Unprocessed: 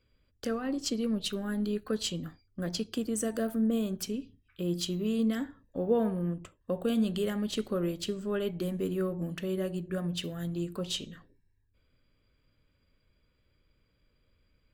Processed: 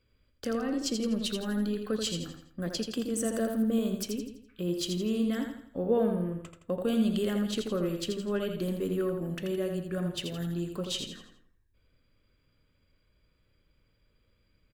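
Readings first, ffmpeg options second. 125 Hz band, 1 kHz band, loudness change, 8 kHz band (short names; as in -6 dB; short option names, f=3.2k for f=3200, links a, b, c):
+0.5 dB, +1.0 dB, +1.0 dB, +1.0 dB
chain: -af "aecho=1:1:83|166|249|332|415:0.501|0.205|0.0842|0.0345|0.0142"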